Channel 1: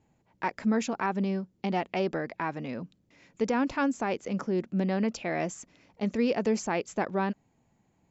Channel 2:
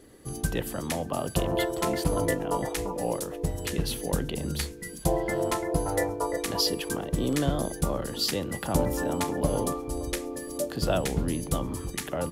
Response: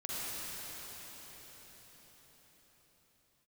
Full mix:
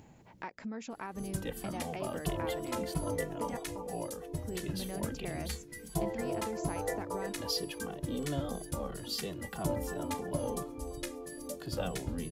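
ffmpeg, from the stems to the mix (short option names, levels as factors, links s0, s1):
-filter_complex "[0:a]acompressor=threshold=0.0355:ratio=6,volume=0.376,asplit=3[s0][s1][s2];[s0]atrim=end=3.57,asetpts=PTS-STARTPTS,afade=t=out:st=3.566:d=0.004:c=hsin[s3];[s1]atrim=start=3.57:end=4.42,asetpts=PTS-STARTPTS,volume=0[s4];[s2]atrim=start=4.42,asetpts=PTS-STARTPTS,afade=t=in:d=0.004:c=hsin[s5];[s3][s4][s5]concat=n=3:v=0:a=1[s6];[1:a]asplit=2[s7][s8];[s8]adelay=2.2,afreqshift=-3[s9];[s7][s9]amix=inputs=2:normalize=1,adelay=900,volume=0.531[s10];[s6][s10]amix=inputs=2:normalize=0,acompressor=mode=upward:threshold=0.00891:ratio=2.5"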